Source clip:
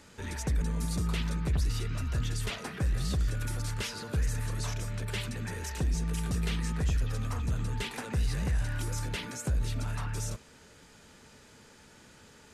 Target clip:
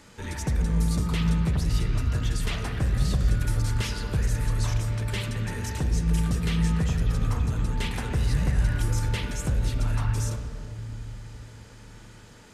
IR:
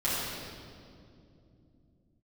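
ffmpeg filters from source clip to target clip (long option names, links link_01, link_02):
-filter_complex "[0:a]asplit=2[link_01][link_02];[1:a]atrim=start_sample=2205,highshelf=frequency=5200:gain=-11.5[link_03];[link_02][link_03]afir=irnorm=-1:irlink=0,volume=-13.5dB[link_04];[link_01][link_04]amix=inputs=2:normalize=0,volume=2dB"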